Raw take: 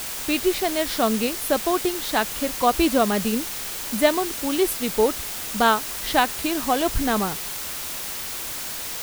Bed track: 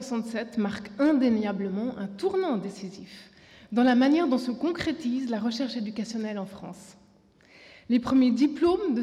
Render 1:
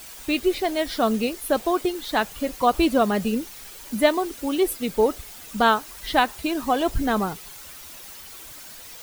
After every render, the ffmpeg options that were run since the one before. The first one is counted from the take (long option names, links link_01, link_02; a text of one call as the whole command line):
ffmpeg -i in.wav -af "afftdn=noise_reduction=12:noise_floor=-31" out.wav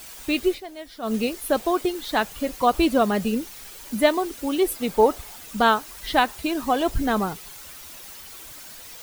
ffmpeg -i in.wav -filter_complex "[0:a]asettb=1/sr,asplit=3[link_01][link_02][link_03];[link_01]atrim=end=4.764[link_04];[link_02]atrim=start=4.76:end=5.37,asetpts=PTS-STARTPTS,afade=type=in:duration=0.004:curve=qsin,afade=type=out:start_time=0.606:duration=0.004:curve=qsin,equalizer=frequency=850:width=1.3:gain=7[link_05];[link_03]atrim=start=5.366[link_06];[link_04][link_05]acrossfade=duration=0.004:curve1=hsin:curve2=qsin[link_07];[link_07][link_06]acrossfade=duration=0.004:curve1=qsin:curve2=hsin,asplit=3[link_08][link_09][link_10];[link_08]atrim=end=0.61,asetpts=PTS-STARTPTS,afade=type=out:start_time=0.48:duration=0.13:silence=0.211349[link_11];[link_09]atrim=start=0.61:end=1.02,asetpts=PTS-STARTPTS,volume=-13.5dB[link_12];[link_10]atrim=start=1.02,asetpts=PTS-STARTPTS,afade=type=in:duration=0.13:silence=0.211349[link_13];[link_11][link_12][link_13]concat=n=3:v=0:a=1" out.wav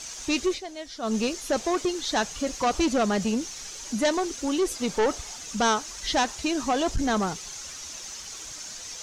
ffmpeg -i in.wav -af "asoftclip=type=tanh:threshold=-18.5dB,lowpass=frequency=6300:width_type=q:width=4.3" out.wav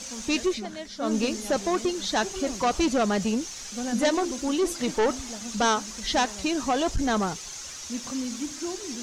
ffmpeg -i in.wav -i bed.wav -filter_complex "[1:a]volume=-11dB[link_01];[0:a][link_01]amix=inputs=2:normalize=0" out.wav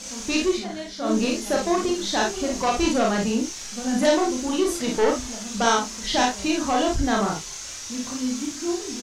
ffmpeg -i in.wav -filter_complex "[0:a]asplit=2[link_01][link_02];[link_02]adelay=32,volume=-11dB[link_03];[link_01][link_03]amix=inputs=2:normalize=0,aecho=1:1:35|55:0.668|0.668" out.wav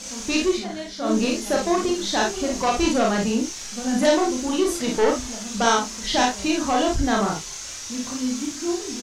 ffmpeg -i in.wav -af "volume=1dB" out.wav